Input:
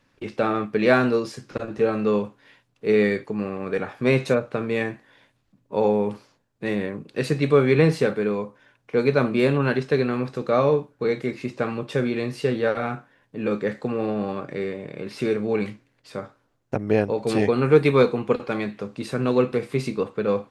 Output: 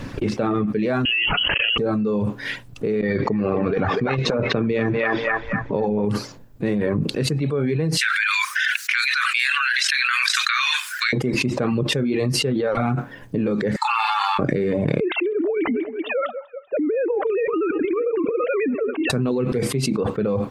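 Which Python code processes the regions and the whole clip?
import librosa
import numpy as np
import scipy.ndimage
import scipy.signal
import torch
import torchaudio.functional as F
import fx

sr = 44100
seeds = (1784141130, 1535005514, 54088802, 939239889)

y = fx.chain(x, sr, fx.freq_invert(carrier_hz=3100),
    fx.env_flatten(amount_pct=70), at=(1.05, 1.78))
y = fx.chain(y, sr, fx.lowpass(hz=5700.0, slope=24),
    fx.over_compress(threshold_db=-24.0, ratio=-0.5),
    fx.echo_banded(ms=243, feedback_pct=46, hz=1200.0, wet_db=-5.5), at=(3.01, 6.05))
y = fx.chain(y, sr, fx.steep_highpass(hz=1500.0, slope=48),
    fx.env_flatten(amount_pct=50), at=(7.97, 11.13))
y = fx.chain(y, sr, fx.cheby_ripple_highpass(hz=870.0, ripple_db=3),
    fx.comb(ms=2.3, depth=0.6), at=(13.76, 14.39))
y = fx.chain(y, sr, fx.sine_speech(),
    fx.over_compress(threshold_db=-25.0, ratio=-0.5),
    fx.echo_feedback(ms=193, feedback_pct=46, wet_db=-20), at=(15.0, 19.1))
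y = fx.dereverb_blind(y, sr, rt60_s=0.87)
y = fx.low_shelf(y, sr, hz=500.0, db=11.0)
y = fx.env_flatten(y, sr, amount_pct=100)
y = y * librosa.db_to_amplitude(-14.5)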